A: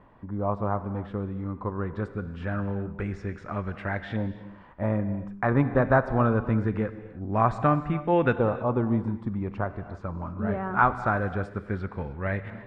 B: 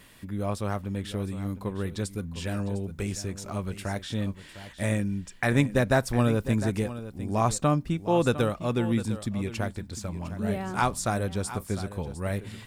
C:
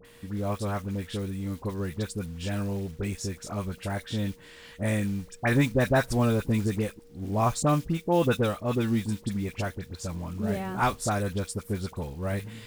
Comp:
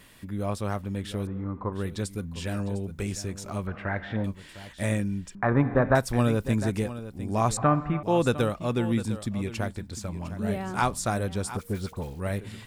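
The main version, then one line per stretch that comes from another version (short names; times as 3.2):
B
1.27–1.73 from A
3.67–4.24 from A
5.35–5.95 from A
7.57–8.03 from A
11.57–12.2 from C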